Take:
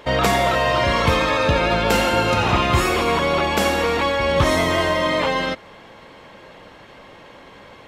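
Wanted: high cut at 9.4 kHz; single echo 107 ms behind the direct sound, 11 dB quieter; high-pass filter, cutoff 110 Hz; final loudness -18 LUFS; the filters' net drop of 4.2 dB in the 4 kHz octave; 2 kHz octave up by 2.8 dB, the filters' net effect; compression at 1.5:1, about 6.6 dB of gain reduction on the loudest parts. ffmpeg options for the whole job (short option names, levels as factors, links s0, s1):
-af "highpass=110,lowpass=9400,equalizer=f=2000:t=o:g=5.5,equalizer=f=4000:t=o:g=-8.5,acompressor=threshold=0.0251:ratio=1.5,aecho=1:1:107:0.282,volume=2"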